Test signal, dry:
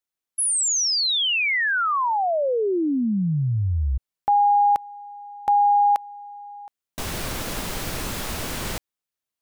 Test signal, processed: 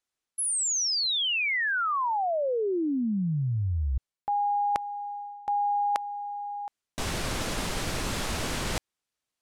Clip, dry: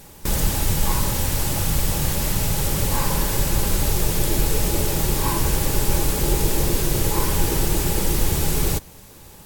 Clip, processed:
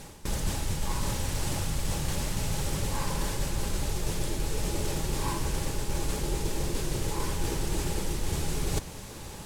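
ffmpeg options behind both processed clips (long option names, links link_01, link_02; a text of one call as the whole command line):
ffmpeg -i in.wav -af "lowpass=9400,areverse,acompressor=threshold=-31dB:ratio=5:attack=22:release=311:knee=6:detection=rms,areverse,volume=4dB" out.wav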